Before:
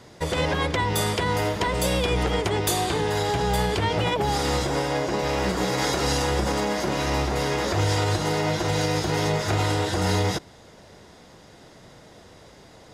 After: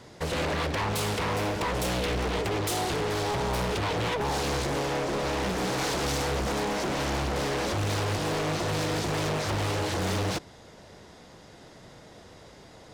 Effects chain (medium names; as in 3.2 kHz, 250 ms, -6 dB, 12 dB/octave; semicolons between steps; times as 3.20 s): overload inside the chain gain 24.5 dB; loudspeaker Doppler distortion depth 0.69 ms; trim -1 dB